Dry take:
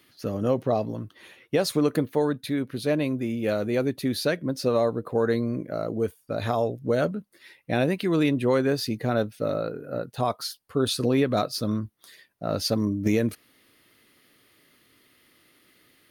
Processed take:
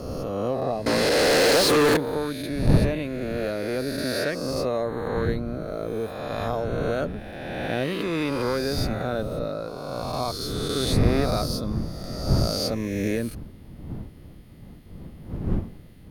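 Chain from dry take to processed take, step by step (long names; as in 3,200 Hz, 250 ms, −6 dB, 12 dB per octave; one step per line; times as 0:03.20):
peak hold with a rise ahead of every peak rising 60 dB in 2.00 s
wind on the microphone 170 Hz −25 dBFS
0:00.86–0:01.97: mid-hump overdrive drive 32 dB, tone 4,600 Hz, clips at −6 dBFS
level −5.5 dB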